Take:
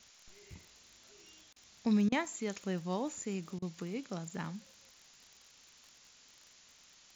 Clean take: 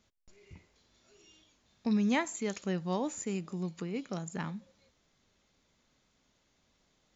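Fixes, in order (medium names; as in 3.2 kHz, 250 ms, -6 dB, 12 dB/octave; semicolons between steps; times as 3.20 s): de-click; interpolate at 1.53/2.09/3.59 s, 30 ms; noise print and reduce 11 dB; trim 0 dB, from 2.13 s +3 dB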